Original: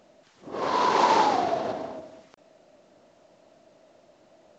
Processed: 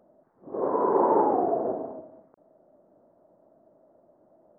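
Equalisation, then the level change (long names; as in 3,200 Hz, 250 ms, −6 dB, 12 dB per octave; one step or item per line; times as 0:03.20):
low-shelf EQ 130 Hz −8 dB
dynamic equaliser 400 Hz, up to +8 dB, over −40 dBFS, Q 1.2
Gaussian smoothing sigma 8.4 samples
0.0 dB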